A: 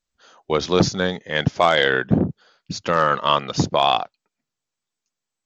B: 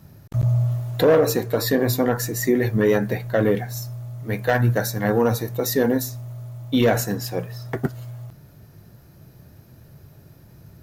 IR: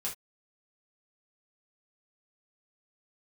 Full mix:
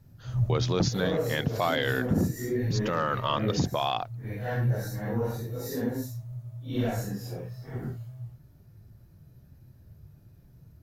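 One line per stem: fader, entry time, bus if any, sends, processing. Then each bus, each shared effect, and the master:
+1.0 dB, 0.00 s, no send, auto duck -7 dB, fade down 0.65 s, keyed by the second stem
-14.0 dB, 0.00 s, no send, phase scrambler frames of 0.2 s; low shelf 140 Hz +6.5 dB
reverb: off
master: low shelf 170 Hz +7.5 dB; limiter -15.5 dBFS, peak gain reduction 9 dB

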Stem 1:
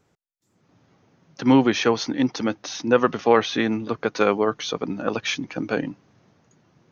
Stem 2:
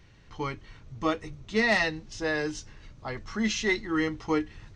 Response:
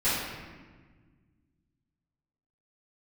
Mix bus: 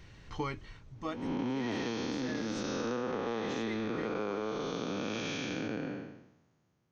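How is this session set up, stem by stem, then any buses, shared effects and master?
+1.0 dB, 0.00 s, no send, time blur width 0.482 s; three-band expander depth 40%
+2.5 dB, 0.00 s, no send, auto duck -12 dB, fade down 0.50 s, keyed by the first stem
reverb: off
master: compressor 12:1, threshold -31 dBFS, peak gain reduction 14 dB

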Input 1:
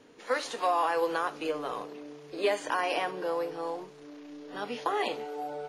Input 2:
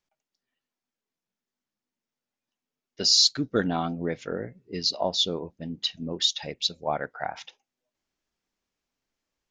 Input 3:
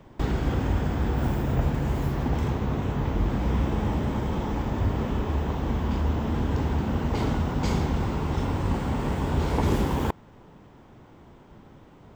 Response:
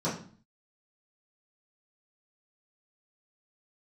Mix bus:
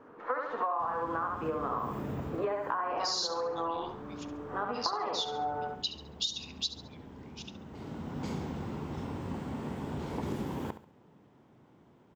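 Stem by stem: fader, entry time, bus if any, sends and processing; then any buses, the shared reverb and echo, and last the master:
+1.0 dB, 0.00 s, no send, echo send -3.5 dB, synth low-pass 1200 Hz, resonance Q 2.9
-2.0 dB, 0.00 s, no send, echo send -13.5 dB, elliptic high-pass 2600 Hz
-12.0 dB, 0.60 s, no send, echo send -12.5 dB, HPF 150 Hz 12 dB/oct; vibrato 0.57 Hz 6.4 cents; low shelf 330 Hz +6.5 dB; auto duck -15 dB, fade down 0.80 s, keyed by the second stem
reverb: off
echo: feedback echo 69 ms, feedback 34%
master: compressor 12:1, threshold -29 dBFS, peak gain reduction 15.5 dB

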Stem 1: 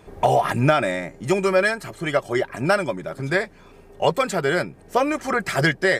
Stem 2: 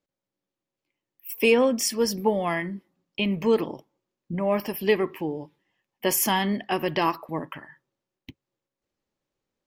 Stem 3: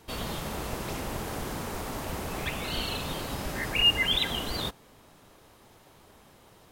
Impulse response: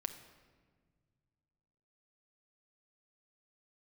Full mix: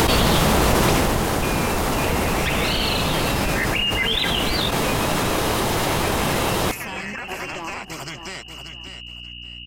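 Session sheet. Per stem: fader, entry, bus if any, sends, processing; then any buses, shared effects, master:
-3.0 dB, 1.85 s, bus A, send -12.5 dB, echo send -10.5 dB, fixed phaser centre 2500 Hz, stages 8; spectral compressor 2:1
-7.5 dB, 0.00 s, bus A, no send, echo send -5.5 dB, hum 60 Hz, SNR 16 dB
-0.5 dB, 0.00 s, no bus, send -11.5 dB, no echo send, fast leveller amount 100%; auto duck -6 dB, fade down 0.35 s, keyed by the second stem
bus A: 0.0 dB, inverted band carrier 2900 Hz; compressor, threshold -31 dBFS, peak gain reduction 9.5 dB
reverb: on, RT60 1.6 s, pre-delay 6 ms
echo: feedback echo 0.584 s, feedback 19%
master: upward compressor, threshold -24 dBFS; Doppler distortion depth 0.14 ms

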